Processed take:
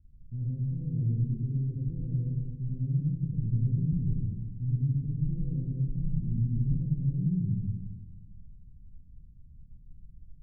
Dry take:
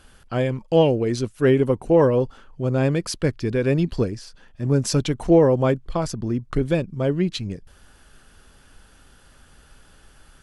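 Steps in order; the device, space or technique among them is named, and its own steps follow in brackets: club heard from the street (limiter -18 dBFS, peak gain reduction 11.5 dB; LPF 170 Hz 24 dB/oct; reverb RT60 1.4 s, pre-delay 78 ms, DRR -6 dB); gain -3.5 dB

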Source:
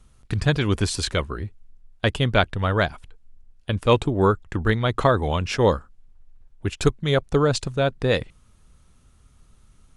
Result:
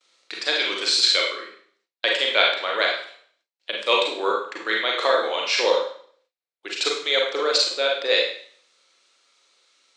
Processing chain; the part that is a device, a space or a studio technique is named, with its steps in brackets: LPF 6800 Hz 24 dB/oct; tilt +4.5 dB/oct; Schroeder reverb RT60 0.54 s, combs from 33 ms, DRR -1.5 dB; gate with hold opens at -52 dBFS; phone speaker on a table (speaker cabinet 330–8300 Hz, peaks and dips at 330 Hz +5 dB, 540 Hz +8 dB, 2200 Hz +6 dB, 4100 Hz +7 dB, 6500 Hz -5 dB); gain -5.5 dB

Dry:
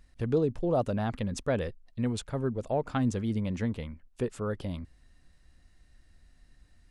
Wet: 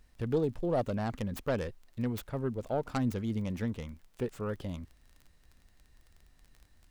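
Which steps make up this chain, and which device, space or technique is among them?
record under a worn stylus (tracing distortion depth 0.27 ms; crackle 20/s -42 dBFS; pink noise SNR 40 dB); gain -3 dB

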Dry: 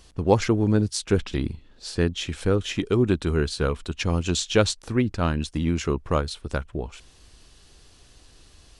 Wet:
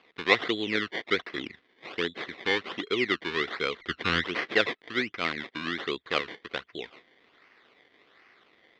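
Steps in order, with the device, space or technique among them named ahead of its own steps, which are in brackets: 3.8–4.24 RIAA curve playback; circuit-bent sampling toy (decimation with a swept rate 23×, swing 100% 1.3 Hz; speaker cabinet 430–4300 Hz, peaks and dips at 600 Hz -7 dB, 870 Hz -9 dB, 2000 Hz +10 dB, 3500 Hz +7 dB); gain -1.5 dB

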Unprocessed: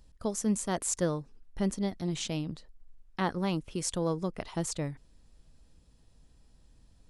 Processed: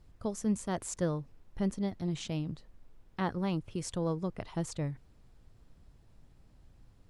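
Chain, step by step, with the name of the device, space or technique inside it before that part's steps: car interior (bell 110 Hz +9 dB 0.77 oct; high shelf 4300 Hz -7 dB; brown noise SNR 24 dB); gain -3 dB

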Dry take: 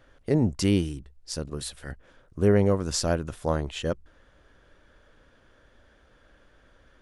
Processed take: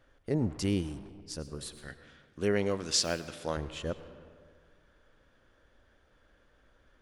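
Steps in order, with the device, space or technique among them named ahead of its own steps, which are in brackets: 1.88–3.57 weighting filter D; saturated reverb return (on a send at -9 dB: reverb RT60 1.6 s, pre-delay 89 ms + soft clip -29 dBFS, distortion -6 dB); on the sum: gain -7 dB

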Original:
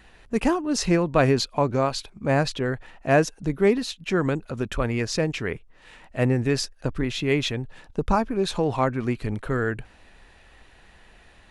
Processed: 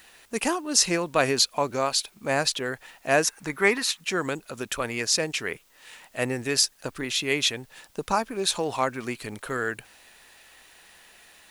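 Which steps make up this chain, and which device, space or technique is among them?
turntable without a phono preamp (RIAA curve recording; white noise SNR 34 dB); 3.24–4 band shelf 1400 Hz +9 dB; gain -1 dB

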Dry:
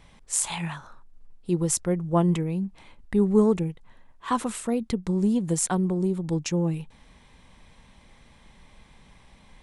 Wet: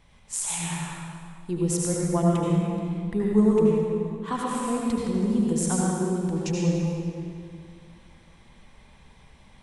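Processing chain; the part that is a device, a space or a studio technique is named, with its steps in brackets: stairwell (reverb RT60 2.3 s, pre-delay 71 ms, DRR -4 dB); gain -5 dB

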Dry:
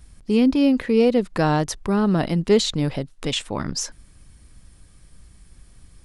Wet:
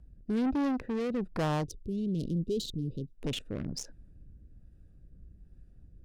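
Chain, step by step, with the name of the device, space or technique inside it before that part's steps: Wiener smoothing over 41 samples; overdriven rotary cabinet (tube stage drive 24 dB, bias 0.25; rotary speaker horn 1.2 Hz); 1.66–3.14 elliptic band-stop 440–3300 Hz, stop band 40 dB; gain -2 dB

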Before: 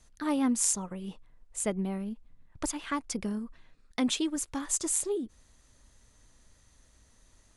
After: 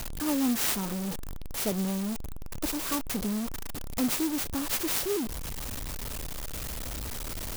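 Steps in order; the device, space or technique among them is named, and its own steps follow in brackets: early CD player with a faulty converter (zero-crossing step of -26.5 dBFS; clock jitter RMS 0.14 ms); gain -2.5 dB

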